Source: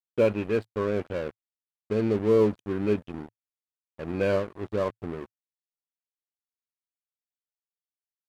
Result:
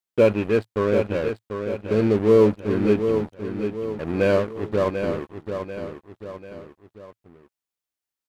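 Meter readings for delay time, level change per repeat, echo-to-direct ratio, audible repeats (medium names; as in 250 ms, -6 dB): 741 ms, -7.0 dB, -6.5 dB, 3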